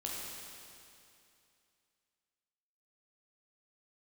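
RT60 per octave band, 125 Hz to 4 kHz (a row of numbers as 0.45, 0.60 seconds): 2.6, 2.6, 2.6, 2.6, 2.6, 2.6 seconds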